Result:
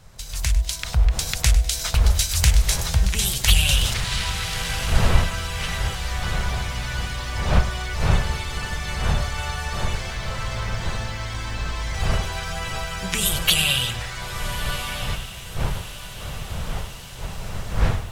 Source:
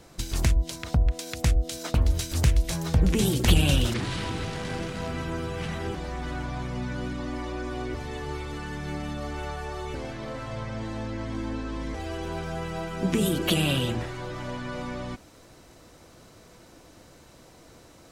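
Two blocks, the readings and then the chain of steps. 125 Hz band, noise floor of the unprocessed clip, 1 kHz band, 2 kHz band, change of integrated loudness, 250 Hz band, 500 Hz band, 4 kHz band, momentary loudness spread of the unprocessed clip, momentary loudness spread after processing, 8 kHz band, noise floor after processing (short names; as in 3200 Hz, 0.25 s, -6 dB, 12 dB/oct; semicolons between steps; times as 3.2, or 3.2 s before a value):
+4.0 dB, -52 dBFS, +5.5 dB, +8.5 dB, +5.0 dB, -4.5 dB, -1.5 dB, +9.5 dB, 11 LU, 13 LU, +11.0 dB, -35 dBFS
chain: wind noise 300 Hz -29 dBFS; passive tone stack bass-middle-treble 10-0-10; AGC gain up to 14 dB; diffused feedback echo 1.302 s, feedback 53%, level -13 dB; lo-fi delay 0.1 s, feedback 35%, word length 7-bit, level -14 dB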